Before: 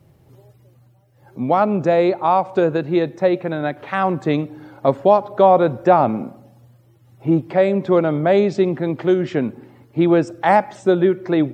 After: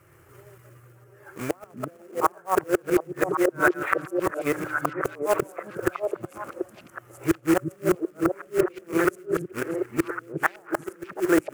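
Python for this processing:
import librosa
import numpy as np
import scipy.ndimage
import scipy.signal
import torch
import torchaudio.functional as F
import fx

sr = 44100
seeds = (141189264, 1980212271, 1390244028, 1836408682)

p1 = fx.reverse_delay(x, sr, ms=116, wet_db=-1.0)
p2 = fx.env_lowpass_down(p1, sr, base_hz=570.0, full_db=-10.5)
p3 = fx.low_shelf(p2, sr, hz=120.0, db=-8.5)
p4 = fx.gate_flip(p3, sr, shuts_db=-9.0, range_db=-33)
p5 = fx.quant_float(p4, sr, bits=2)
p6 = fx.curve_eq(p5, sr, hz=(100.0, 230.0, 340.0, 840.0, 1300.0, 2700.0, 3800.0, 7500.0), db=(0, -15, 1, -4, 13, 3, -8, 4))
y = p6 + fx.echo_stepped(p6, sr, ms=368, hz=180.0, octaves=1.4, feedback_pct=70, wet_db=0.0, dry=0)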